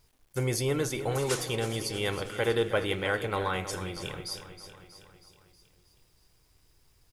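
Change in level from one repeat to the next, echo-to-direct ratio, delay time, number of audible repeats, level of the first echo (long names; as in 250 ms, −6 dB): −4.5 dB, −10.0 dB, 319 ms, 5, −12.0 dB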